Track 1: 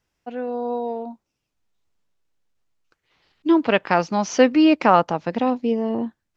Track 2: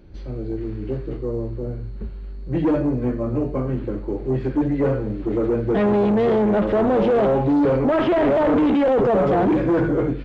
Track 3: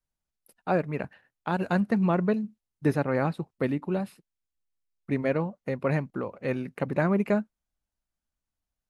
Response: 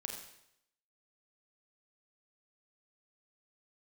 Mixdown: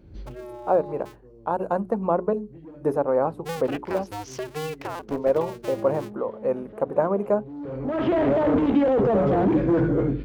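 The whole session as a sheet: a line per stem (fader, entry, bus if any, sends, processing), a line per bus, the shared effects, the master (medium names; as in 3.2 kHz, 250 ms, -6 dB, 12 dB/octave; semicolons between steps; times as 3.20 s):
-10.5 dB, 0.00 s, no send, cycle switcher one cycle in 2, inverted; compression 6:1, threshold -18 dBFS, peak gain reduction 9.5 dB
-6.0 dB, 0.00 s, no send, high-pass 50 Hz; bass shelf 430 Hz +7.5 dB; auto duck -22 dB, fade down 0.25 s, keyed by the third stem
-3.5 dB, 0.00 s, no send, graphic EQ 125/500/1000/2000/4000 Hz -6/+10/+10/-11/-11 dB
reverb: none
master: hum notches 60/120/180/240/300/360/420 Hz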